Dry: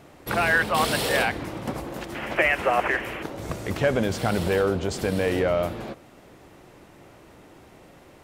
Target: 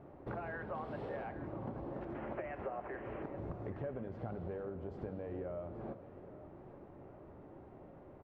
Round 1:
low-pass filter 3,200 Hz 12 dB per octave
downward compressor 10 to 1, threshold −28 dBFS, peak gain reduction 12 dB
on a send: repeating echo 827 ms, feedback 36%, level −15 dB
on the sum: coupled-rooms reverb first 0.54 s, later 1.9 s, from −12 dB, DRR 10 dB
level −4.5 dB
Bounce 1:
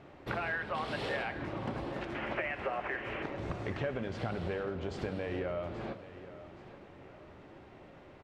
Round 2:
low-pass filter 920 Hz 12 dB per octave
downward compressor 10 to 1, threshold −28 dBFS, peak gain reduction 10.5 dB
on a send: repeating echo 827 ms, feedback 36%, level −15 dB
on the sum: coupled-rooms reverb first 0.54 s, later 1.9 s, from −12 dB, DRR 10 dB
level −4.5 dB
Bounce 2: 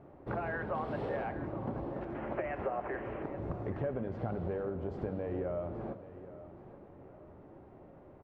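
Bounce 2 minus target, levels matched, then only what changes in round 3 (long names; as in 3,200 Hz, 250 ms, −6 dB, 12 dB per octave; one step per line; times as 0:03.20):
downward compressor: peak gain reduction −6.5 dB
change: downward compressor 10 to 1, threshold −35 dBFS, peak gain reduction 17 dB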